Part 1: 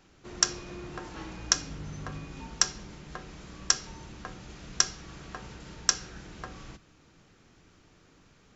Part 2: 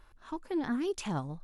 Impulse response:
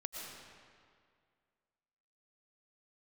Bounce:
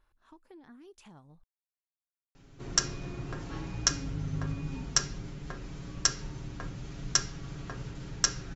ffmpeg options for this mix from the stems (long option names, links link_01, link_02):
-filter_complex "[0:a]lowshelf=frequency=290:gain=11.5,aecho=1:1:7.3:0.59,bandreject=frequency=76.84:width_type=h:width=4,bandreject=frequency=153.68:width_type=h:width=4,bandreject=frequency=230.52:width_type=h:width=4,bandreject=frequency=307.36:width_type=h:width=4,bandreject=frequency=384.2:width_type=h:width=4,bandreject=frequency=461.04:width_type=h:width=4,bandreject=frequency=537.88:width_type=h:width=4,bandreject=frequency=614.72:width_type=h:width=4,bandreject=frequency=691.56:width_type=h:width=4,bandreject=frequency=768.4:width_type=h:width=4,bandreject=frequency=845.24:width_type=h:width=4,bandreject=frequency=922.08:width_type=h:width=4,bandreject=frequency=998.92:width_type=h:width=4,bandreject=frequency=1075.76:width_type=h:width=4,bandreject=frequency=1152.6:width_type=h:width=4,bandreject=frequency=1229.44:width_type=h:width=4,bandreject=frequency=1306.28:width_type=h:width=4,bandreject=frequency=1383.12:width_type=h:width=4,bandreject=frequency=1459.96:width_type=h:width=4,bandreject=frequency=1536.8:width_type=h:width=4,bandreject=frequency=1613.64:width_type=h:width=4,bandreject=frequency=1690.48:width_type=h:width=4,bandreject=frequency=1767.32:width_type=h:width=4,bandreject=frequency=1844.16:width_type=h:width=4,bandreject=frequency=1921:width_type=h:width=4,bandreject=frequency=1997.84:width_type=h:width=4,bandreject=frequency=2074.68:width_type=h:width=4,bandreject=frequency=2151.52:width_type=h:width=4,bandreject=frequency=2228.36:width_type=h:width=4,bandreject=frequency=2305.2:width_type=h:width=4,bandreject=frequency=2382.04:width_type=h:width=4,bandreject=frequency=2458.88:width_type=h:width=4,bandreject=frequency=2535.72:width_type=h:width=4,bandreject=frequency=2612.56:width_type=h:width=4,bandreject=frequency=2689.4:width_type=h:width=4,bandreject=frequency=2766.24:width_type=h:width=4,bandreject=frequency=2843.08:width_type=h:width=4,adelay=2350,volume=-3.5dB[link_01];[1:a]acompressor=threshold=-38dB:ratio=4,volume=-13dB[link_02];[link_01][link_02]amix=inputs=2:normalize=0"